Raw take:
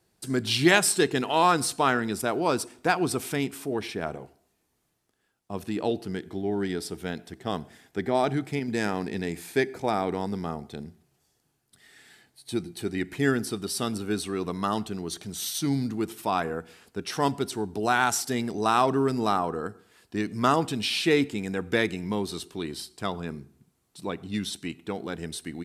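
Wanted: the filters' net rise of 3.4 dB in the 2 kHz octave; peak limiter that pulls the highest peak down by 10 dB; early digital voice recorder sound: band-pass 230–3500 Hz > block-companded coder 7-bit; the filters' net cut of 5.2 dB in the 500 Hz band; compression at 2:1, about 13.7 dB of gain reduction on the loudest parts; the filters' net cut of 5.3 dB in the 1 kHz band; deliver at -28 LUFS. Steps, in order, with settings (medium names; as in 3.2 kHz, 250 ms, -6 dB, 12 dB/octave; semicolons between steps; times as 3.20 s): peaking EQ 500 Hz -5 dB; peaking EQ 1 kHz -8 dB; peaking EQ 2 kHz +8 dB; compression 2:1, threshold -39 dBFS; peak limiter -27.5 dBFS; band-pass 230–3500 Hz; block-companded coder 7-bit; trim +14 dB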